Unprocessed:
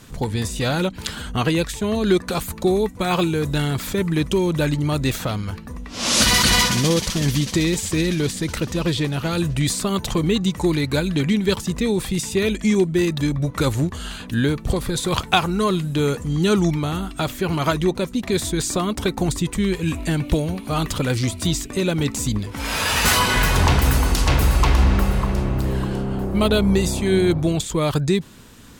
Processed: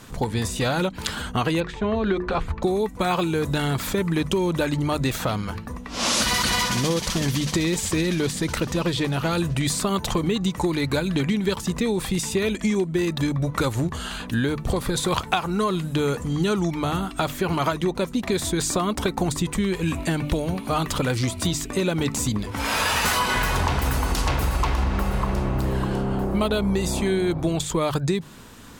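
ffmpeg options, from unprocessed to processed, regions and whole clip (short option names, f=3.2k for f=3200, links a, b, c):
-filter_complex "[0:a]asettb=1/sr,asplit=3[a][b][c];[a]atrim=end=1.604[d];[b]atrim=start=1.6:end=2.63,asetpts=PTS-STARTPTS,afade=t=in:d=0.004:c=qsin,afade=t=out:st=1.026:d=0.004:c=qsin,lowpass=2.6k,asubboost=boost=12:cutoff=84,bandreject=f=60:t=h:w=6,bandreject=f=120:t=h:w=6,bandreject=f=180:t=h:w=6,bandreject=f=240:t=h:w=6,bandreject=f=300:t=h:w=6,bandreject=f=360:t=h:w=6,bandreject=f=420:t=h:w=6,bandreject=f=480:t=h:w=6[e];[c]atrim=start=2.626[f];[d][e]acrossfade=d=0.004:c1=hsin:c2=qsin[g];[g][f]acrossfade=d=0.004:c1=qsin:c2=hsin,equalizer=f=940:w=0.82:g=4.5,bandreject=f=50:t=h:w=6,bandreject=f=100:t=h:w=6,bandreject=f=150:t=h:w=6,acompressor=threshold=-19dB:ratio=6"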